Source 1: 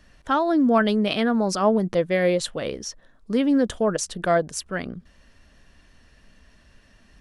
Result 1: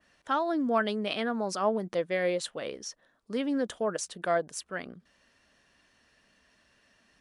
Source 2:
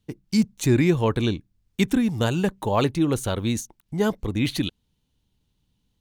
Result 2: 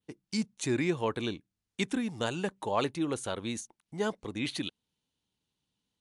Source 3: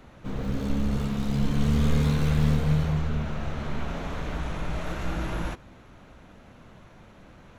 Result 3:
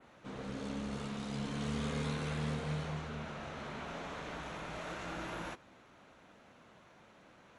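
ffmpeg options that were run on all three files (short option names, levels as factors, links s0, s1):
-af "highpass=f=390:p=1,adynamicequalizer=threshold=0.00562:dfrequency=5500:dqfactor=0.92:tfrequency=5500:tqfactor=0.92:attack=5:release=100:ratio=0.375:range=1.5:mode=cutabove:tftype=bell,volume=0.562" -ar 24000 -c:a libmp3lame -b:a 96k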